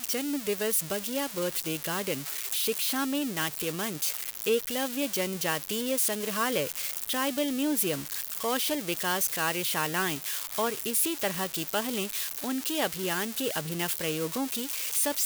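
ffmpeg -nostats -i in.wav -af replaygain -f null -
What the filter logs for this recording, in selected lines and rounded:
track_gain = +11.8 dB
track_peak = 0.136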